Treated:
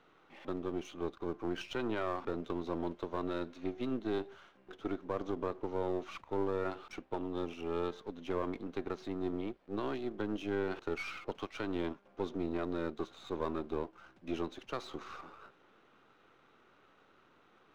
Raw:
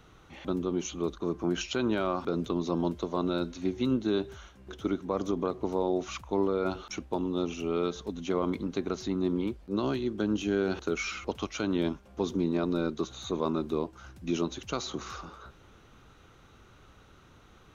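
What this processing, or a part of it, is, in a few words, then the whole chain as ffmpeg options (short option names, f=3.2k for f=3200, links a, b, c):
crystal radio: -af "highpass=280,lowpass=2.9k,aeval=exprs='if(lt(val(0),0),0.447*val(0),val(0))':c=same,volume=-2.5dB"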